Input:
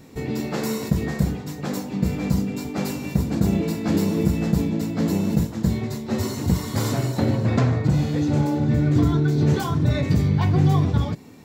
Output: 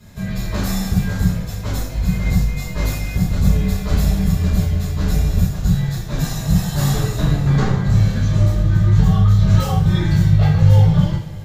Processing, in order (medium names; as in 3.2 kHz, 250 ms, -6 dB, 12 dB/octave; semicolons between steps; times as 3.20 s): frequency shift -250 Hz; two-slope reverb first 0.49 s, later 3.3 s, from -21 dB, DRR -8 dB; trim -4 dB